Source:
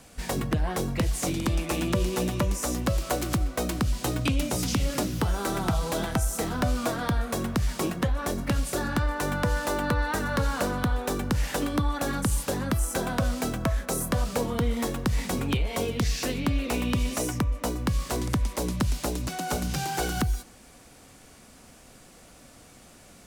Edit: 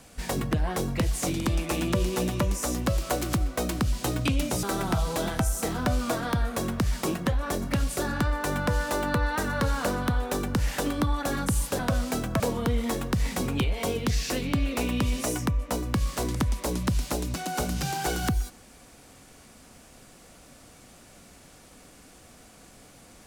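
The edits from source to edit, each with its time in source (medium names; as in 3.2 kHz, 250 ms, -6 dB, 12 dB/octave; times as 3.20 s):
4.63–5.39 s: delete
12.55–13.09 s: delete
13.70–14.33 s: delete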